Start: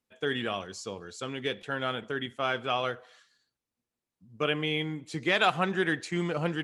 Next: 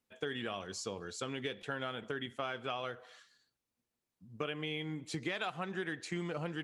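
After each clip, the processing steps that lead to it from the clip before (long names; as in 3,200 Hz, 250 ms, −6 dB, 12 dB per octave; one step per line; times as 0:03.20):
downward compressor 6 to 1, threshold −35 dBFS, peak gain reduction 15 dB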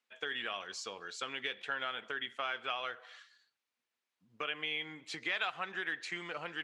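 resonant band-pass 2,200 Hz, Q 0.75
level +5.5 dB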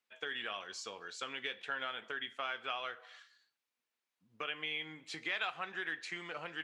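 tuned comb filter 53 Hz, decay 0.25 s, harmonics all, mix 50%
level +1 dB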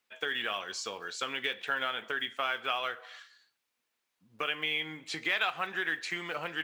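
one scale factor per block 7 bits
level +7 dB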